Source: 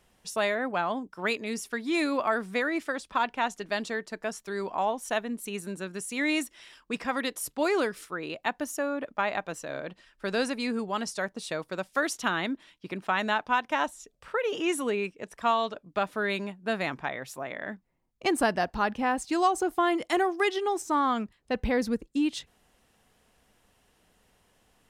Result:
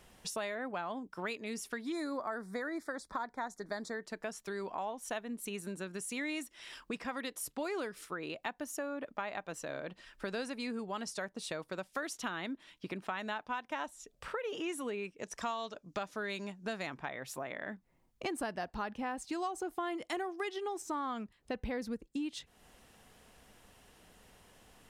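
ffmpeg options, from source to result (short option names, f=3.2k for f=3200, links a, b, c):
-filter_complex "[0:a]asettb=1/sr,asplit=3[a][b][c];[a]atrim=end=1.924[d];[b]atrim=start=1.92:end=4.03,asetpts=PTS-STARTPTS,afade=t=in:d=0.004:c=qsin,afade=t=out:st=2.106:d=0.004:c=qsin,asuperstop=centerf=2800:order=4:qfactor=1.4[e];[c]atrim=start=4.026[f];[d][e]acrossfade=d=0.004:c1=hsin:c2=qsin[g];[g][f]acrossfade=d=0.004:c1=qsin:c2=hsin,asettb=1/sr,asplit=3[h][i][j];[h]atrim=end=15.194[k];[i]atrim=start=15.19:end=16.87,asetpts=PTS-STARTPTS,afade=t=in:d=0.004:c=qsin,afade=t=out:st=1.676:d=0.004:c=qsin,equalizer=f=6.1k:t=o:w=0.79:g=12[l];[j]atrim=start=16.866[m];[k][l]acrossfade=d=0.004:c1=hsin:c2=qsin[n];[n][m]acrossfade=d=0.004:c1=qsin:c2=hsin,acompressor=threshold=-46dB:ratio=3,volume=5dB"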